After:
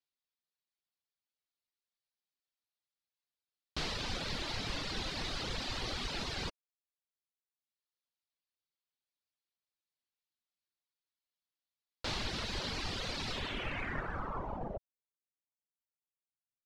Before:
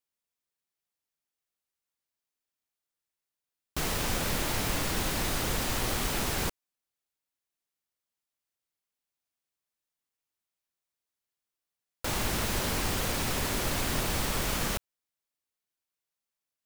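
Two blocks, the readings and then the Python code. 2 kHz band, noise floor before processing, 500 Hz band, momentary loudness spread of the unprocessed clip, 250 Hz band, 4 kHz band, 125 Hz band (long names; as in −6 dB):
−6.5 dB, below −85 dBFS, −8.0 dB, 4 LU, −9.0 dB, −4.0 dB, −9.0 dB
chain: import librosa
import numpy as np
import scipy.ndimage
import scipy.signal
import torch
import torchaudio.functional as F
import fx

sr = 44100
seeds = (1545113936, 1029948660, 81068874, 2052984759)

y = fx.filter_sweep_lowpass(x, sr, from_hz=4300.0, to_hz=130.0, start_s=13.31, end_s=16.07, q=2.4)
y = fx.dereverb_blind(y, sr, rt60_s=1.2)
y = F.gain(torch.from_numpy(y), -6.0).numpy()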